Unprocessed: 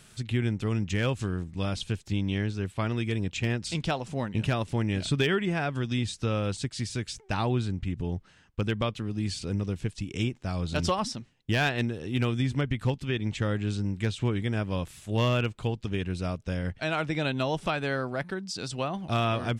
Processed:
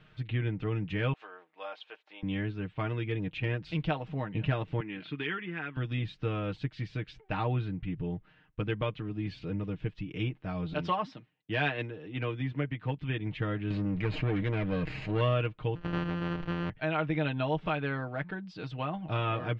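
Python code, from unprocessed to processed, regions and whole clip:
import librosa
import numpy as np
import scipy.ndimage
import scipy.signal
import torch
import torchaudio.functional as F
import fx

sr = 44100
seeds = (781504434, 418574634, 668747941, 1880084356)

y = fx.chain(x, sr, fx.highpass(hz=650.0, slope=24),
    fx.tilt_shelf(db=5.5, hz=940.0), at=(1.13, 2.23))
y = fx.chain(y, sr, fx.bandpass_edges(low_hz=300.0, high_hz=3500.0),
    fx.peak_eq(hz=620.0, db=-14.5, octaves=0.87), at=(4.8, 5.77))
y = fx.chain(y, sr, fx.highpass(hz=56.0, slope=12),
    fx.low_shelf(hz=120.0, db=-10.0),
    fx.band_widen(depth_pct=40), at=(10.73, 12.99))
y = fx.chain(y, sr, fx.lower_of_two(delay_ms=0.42),
    fx.env_flatten(amount_pct=70), at=(13.7, 15.21))
y = fx.chain(y, sr, fx.sample_sort(block=256),
    fx.sustainer(db_per_s=35.0), at=(15.75, 16.7))
y = scipy.signal.sosfilt(scipy.signal.butter(4, 3100.0, 'lowpass', fs=sr, output='sos'), y)
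y = y + 0.7 * np.pad(y, (int(6.5 * sr / 1000.0), 0))[:len(y)]
y = F.gain(torch.from_numpy(y), -4.5).numpy()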